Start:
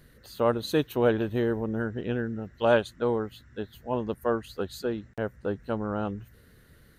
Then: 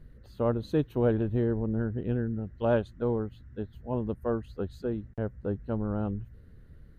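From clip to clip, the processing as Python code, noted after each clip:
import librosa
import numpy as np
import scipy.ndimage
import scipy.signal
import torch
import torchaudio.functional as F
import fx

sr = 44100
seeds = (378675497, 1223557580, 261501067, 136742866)

y = fx.tilt_eq(x, sr, slope=-3.5)
y = y * 10.0 ** (-7.0 / 20.0)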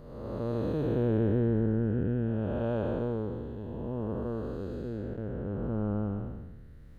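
y = fx.spec_blur(x, sr, span_ms=502.0)
y = y * 10.0 ** (2.5 / 20.0)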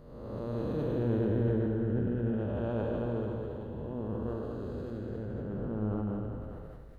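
y = fx.echo_split(x, sr, split_hz=390.0, low_ms=83, high_ms=219, feedback_pct=52, wet_db=-4)
y = fx.sustainer(y, sr, db_per_s=21.0)
y = y * 10.0 ** (-4.5 / 20.0)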